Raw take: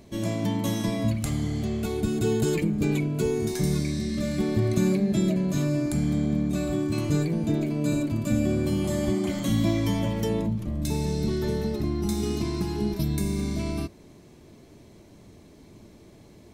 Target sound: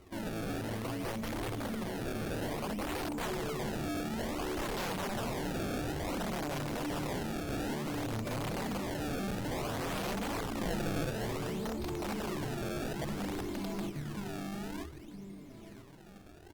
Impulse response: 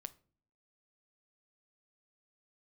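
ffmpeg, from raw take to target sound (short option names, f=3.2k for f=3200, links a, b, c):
-filter_complex "[0:a]asettb=1/sr,asplit=3[a][b][c];[a]atrim=end=7.914[d];[b]atrim=start=7.91:end=8.79,asetpts=PTS-STARTPTS,afade=t=in:d=0.004:c=qsin,afade=t=out:st=0.876:d=0.004:c=qsin,equalizer=f=330:w=6:g=-11.5[e];[c]atrim=start=8.786[f];[d][e]acrossfade=d=0.004:c1=hsin:c2=qsin[g];[g][f]acrossfade=d=0.004:c1=qsin:c2=hsin,asplit=2[h][i];[i]adelay=967,lowpass=f=4.8k:p=1,volume=-4dB,asplit=2[j][k];[k]adelay=967,lowpass=f=4.8k:p=1,volume=0.24,asplit=2[l][m];[m]adelay=967,lowpass=f=4.8k:p=1,volume=0.24[n];[h][j][l][n]amix=inputs=4:normalize=0[o];[1:a]atrim=start_sample=2205,afade=t=out:st=0.3:d=0.01,atrim=end_sample=13671,asetrate=27783,aresample=44100[p];[o][p]afir=irnorm=-1:irlink=0,aeval=exprs='(mod(10.6*val(0)+1,2)-1)/10.6':c=same,flanger=delay=2.1:depth=6.9:regen=-1:speed=0.67:shape=triangular,asoftclip=type=tanh:threshold=-33dB,asettb=1/sr,asplit=3[q][r][s];[q]atrim=end=10.604[t];[r]atrim=start=10.6:end=11.1,asetpts=PTS-STARTPTS,afade=t=in:d=0.004:c=qsin,afade=t=out:st=0.496:d=0.004:c=qsin,aecho=1:1:5.9:0.83,atrim=end_sample=22050[u];[s]atrim=start=11.096[v];[t][u]acrossfade=d=0.004:c1=hsin:c2=qsin[w];[w][v]acrossfade=d=0.004:c1=qsin:c2=hsin,acrusher=samples=25:mix=1:aa=0.000001:lfo=1:lforange=40:lforate=0.57" -ar 48000 -c:a libopus -b:a 48k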